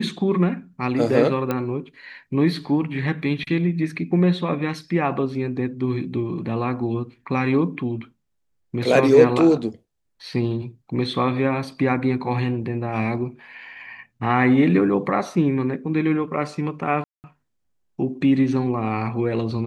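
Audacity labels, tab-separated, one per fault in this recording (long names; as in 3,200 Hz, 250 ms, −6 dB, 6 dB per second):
1.510000	1.510000	click −11 dBFS
17.040000	17.240000	drop-out 199 ms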